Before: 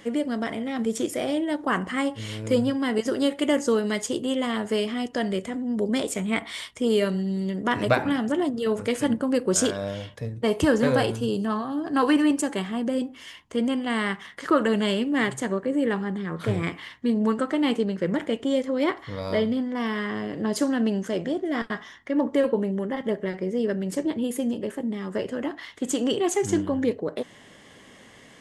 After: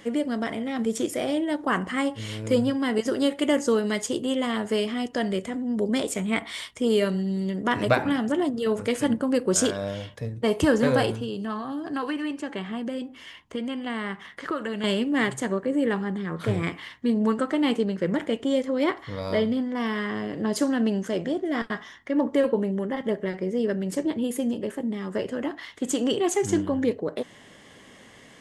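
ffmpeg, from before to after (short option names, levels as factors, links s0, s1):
-filter_complex "[0:a]asettb=1/sr,asplit=3[s0][s1][s2];[s0]atrim=end=11.134[s3];[s1]atrim=start=11.13:end=14.84,asetpts=PTS-STARTPTS,afade=t=in:d=0.004:c=qsin,afade=t=out:st=3.706:d=0.004:c=qsin,acrossover=split=1500|4000[s4][s5][s6];[s4]acompressor=threshold=0.0355:ratio=4[s7];[s5]acompressor=threshold=0.0141:ratio=4[s8];[s6]acompressor=threshold=0.00112:ratio=4[s9];[s7][s8][s9]amix=inputs=3:normalize=0[s10];[s2]atrim=start=14.836[s11];[s3][s10]acrossfade=d=0.004:c1=hsin:c2=qsin[s12];[s12][s11]acrossfade=d=0.004:c1=qsin:c2=hsin"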